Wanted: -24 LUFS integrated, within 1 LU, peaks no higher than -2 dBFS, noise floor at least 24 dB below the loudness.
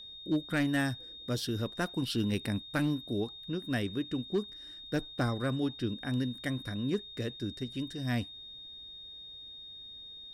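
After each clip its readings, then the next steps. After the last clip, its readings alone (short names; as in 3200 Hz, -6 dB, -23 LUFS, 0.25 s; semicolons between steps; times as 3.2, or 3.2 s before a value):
clipped 0.4%; flat tops at -22.5 dBFS; steady tone 3700 Hz; tone level -45 dBFS; loudness -34.0 LUFS; peak -22.5 dBFS; loudness target -24.0 LUFS
-> clip repair -22.5 dBFS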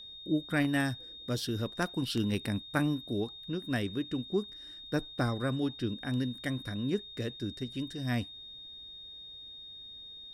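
clipped 0.0%; steady tone 3700 Hz; tone level -45 dBFS
-> notch 3700 Hz, Q 30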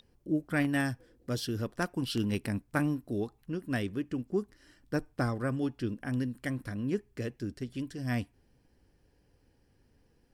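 steady tone none; loudness -34.0 LUFS; peak -13.5 dBFS; loudness target -24.0 LUFS
-> gain +10 dB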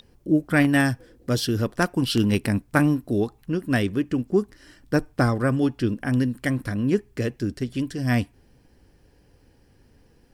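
loudness -24.0 LUFS; peak -3.5 dBFS; noise floor -59 dBFS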